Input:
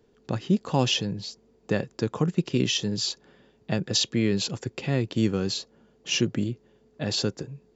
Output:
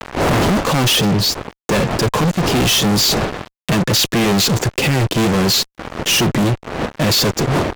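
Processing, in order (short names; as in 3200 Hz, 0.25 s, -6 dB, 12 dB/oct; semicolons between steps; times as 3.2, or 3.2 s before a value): wind noise 610 Hz -42 dBFS; fuzz box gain 44 dB, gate -46 dBFS; mismatched tape noise reduction encoder only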